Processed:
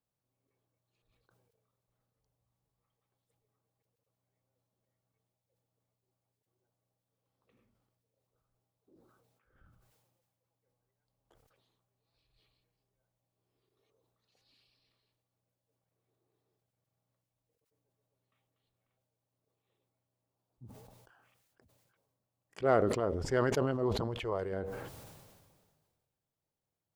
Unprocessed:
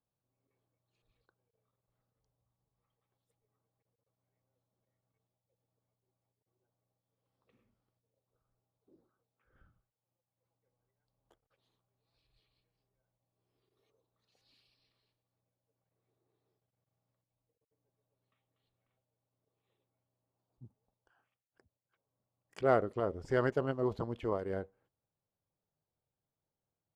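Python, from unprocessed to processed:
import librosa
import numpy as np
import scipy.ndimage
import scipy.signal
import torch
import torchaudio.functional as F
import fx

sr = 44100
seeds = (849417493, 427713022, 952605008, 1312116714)

y = fx.peak_eq(x, sr, hz=250.0, db=-12.5, octaves=0.55, at=(24.07, 24.52))
y = fx.sustainer(y, sr, db_per_s=34.0)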